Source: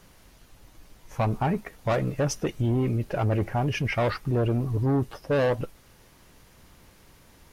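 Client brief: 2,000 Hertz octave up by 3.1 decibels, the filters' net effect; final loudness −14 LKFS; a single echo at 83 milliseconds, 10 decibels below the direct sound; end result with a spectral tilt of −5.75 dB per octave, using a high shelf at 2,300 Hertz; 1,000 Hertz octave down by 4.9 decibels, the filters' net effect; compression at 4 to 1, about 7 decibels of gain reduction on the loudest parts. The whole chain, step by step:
parametric band 1,000 Hz −9 dB
parametric band 2,000 Hz +4 dB
high-shelf EQ 2,300 Hz +4.5 dB
downward compressor 4 to 1, threshold −30 dBFS
single-tap delay 83 ms −10 dB
level +19 dB

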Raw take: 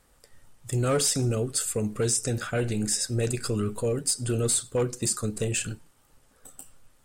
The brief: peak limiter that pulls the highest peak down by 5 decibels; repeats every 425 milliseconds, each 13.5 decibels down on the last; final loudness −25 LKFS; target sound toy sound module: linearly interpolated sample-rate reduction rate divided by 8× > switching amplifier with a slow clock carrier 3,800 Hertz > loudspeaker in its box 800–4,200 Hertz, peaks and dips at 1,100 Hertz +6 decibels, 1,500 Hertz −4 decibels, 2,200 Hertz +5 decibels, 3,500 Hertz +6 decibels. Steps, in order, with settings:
brickwall limiter −20.5 dBFS
repeating echo 425 ms, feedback 21%, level −13.5 dB
linearly interpolated sample-rate reduction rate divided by 8×
switching amplifier with a slow clock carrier 3,800 Hz
loudspeaker in its box 800–4,200 Hz, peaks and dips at 1,100 Hz +6 dB, 1,500 Hz −4 dB, 2,200 Hz +5 dB, 3,500 Hz +6 dB
level +11 dB

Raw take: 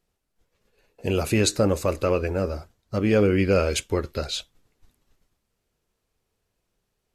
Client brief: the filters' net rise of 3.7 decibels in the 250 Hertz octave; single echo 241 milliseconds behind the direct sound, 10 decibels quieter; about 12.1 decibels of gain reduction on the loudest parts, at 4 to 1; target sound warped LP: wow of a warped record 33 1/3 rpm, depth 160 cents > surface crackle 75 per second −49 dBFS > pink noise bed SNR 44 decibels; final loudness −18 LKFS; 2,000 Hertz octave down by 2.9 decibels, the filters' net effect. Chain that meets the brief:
parametric band 250 Hz +5 dB
parametric band 2,000 Hz −4 dB
downward compressor 4 to 1, threshold −29 dBFS
single-tap delay 241 ms −10 dB
wow of a warped record 33 1/3 rpm, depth 160 cents
surface crackle 75 per second −49 dBFS
pink noise bed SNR 44 dB
level +14.5 dB

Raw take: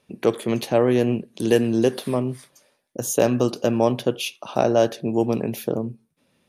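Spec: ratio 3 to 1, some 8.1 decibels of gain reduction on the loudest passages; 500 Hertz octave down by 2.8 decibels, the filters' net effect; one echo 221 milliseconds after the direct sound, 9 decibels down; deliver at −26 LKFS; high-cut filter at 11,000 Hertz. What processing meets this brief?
low-pass filter 11,000 Hz
parametric band 500 Hz −3.5 dB
downward compressor 3 to 1, threshold −26 dBFS
single-tap delay 221 ms −9 dB
level +4 dB

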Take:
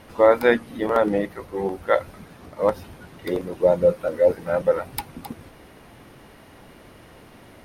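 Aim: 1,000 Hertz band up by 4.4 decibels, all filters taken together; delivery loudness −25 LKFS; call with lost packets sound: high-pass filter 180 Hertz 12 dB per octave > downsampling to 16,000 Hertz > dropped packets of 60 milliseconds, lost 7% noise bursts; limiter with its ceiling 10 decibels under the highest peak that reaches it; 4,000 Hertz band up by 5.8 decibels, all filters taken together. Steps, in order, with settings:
parametric band 1,000 Hz +5.5 dB
parametric band 4,000 Hz +6.5 dB
brickwall limiter −10 dBFS
high-pass filter 180 Hz 12 dB per octave
downsampling to 16,000 Hz
dropped packets of 60 ms, lost 7% noise bursts
level −0.5 dB

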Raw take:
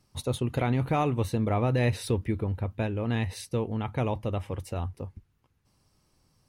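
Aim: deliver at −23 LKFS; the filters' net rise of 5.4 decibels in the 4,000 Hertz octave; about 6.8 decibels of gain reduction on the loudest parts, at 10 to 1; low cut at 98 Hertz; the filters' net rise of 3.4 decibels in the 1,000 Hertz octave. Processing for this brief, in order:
high-pass filter 98 Hz
parametric band 1,000 Hz +4.5 dB
parametric band 4,000 Hz +6 dB
downward compressor 10 to 1, threshold −27 dBFS
level +11 dB

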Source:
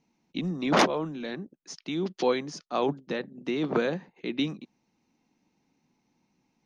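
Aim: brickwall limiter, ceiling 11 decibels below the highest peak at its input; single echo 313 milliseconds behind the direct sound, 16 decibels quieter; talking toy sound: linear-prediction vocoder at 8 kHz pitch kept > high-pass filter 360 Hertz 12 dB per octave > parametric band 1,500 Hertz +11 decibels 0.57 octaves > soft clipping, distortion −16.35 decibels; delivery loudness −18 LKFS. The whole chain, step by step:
brickwall limiter −21.5 dBFS
single-tap delay 313 ms −16 dB
linear-prediction vocoder at 8 kHz pitch kept
high-pass filter 360 Hz 12 dB per octave
parametric band 1,500 Hz +11 dB 0.57 octaves
soft clipping −24.5 dBFS
level +19 dB

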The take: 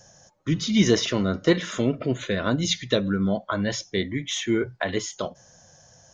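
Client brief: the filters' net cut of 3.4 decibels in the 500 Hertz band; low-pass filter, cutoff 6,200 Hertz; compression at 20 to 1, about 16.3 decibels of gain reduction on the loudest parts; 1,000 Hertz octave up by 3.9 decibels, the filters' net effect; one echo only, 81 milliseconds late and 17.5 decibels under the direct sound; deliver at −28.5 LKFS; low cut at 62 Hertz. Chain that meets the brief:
high-pass filter 62 Hz
low-pass filter 6,200 Hz
parametric band 500 Hz −6 dB
parametric band 1,000 Hz +7 dB
downward compressor 20 to 1, threshold −31 dBFS
single-tap delay 81 ms −17.5 dB
level +8 dB

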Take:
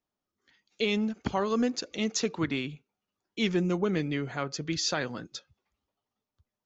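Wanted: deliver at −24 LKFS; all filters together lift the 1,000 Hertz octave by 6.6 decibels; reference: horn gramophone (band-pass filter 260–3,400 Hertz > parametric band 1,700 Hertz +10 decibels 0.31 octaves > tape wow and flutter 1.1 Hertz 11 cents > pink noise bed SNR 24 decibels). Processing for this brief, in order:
band-pass filter 260–3,400 Hz
parametric band 1,000 Hz +7.5 dB
parametric band 1,700 Hz +10 dB 0.31 octaves
tape wow and flutter 1.1 Hz 11 cents
pink noise bed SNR 24 dB
level +6 dB

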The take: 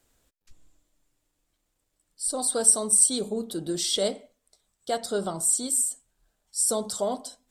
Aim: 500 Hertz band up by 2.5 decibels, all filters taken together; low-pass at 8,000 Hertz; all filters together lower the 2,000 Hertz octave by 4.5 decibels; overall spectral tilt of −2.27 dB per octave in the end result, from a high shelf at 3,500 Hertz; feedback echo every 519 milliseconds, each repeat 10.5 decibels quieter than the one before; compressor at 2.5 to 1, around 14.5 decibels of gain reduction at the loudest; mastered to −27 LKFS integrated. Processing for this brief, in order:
low-pass filter 8,000 Hz
parametric band 500 Hz +3.5 dB
parametric band 2,000 Hz −5 dB
high-shelf EQ 3,500 Hz −6.5 dB
downward compressor 2.5 to 1, threshold −44 dBFS
repeating echo 519 ms, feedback 30%, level −10.5 dB
level +14.5 dB

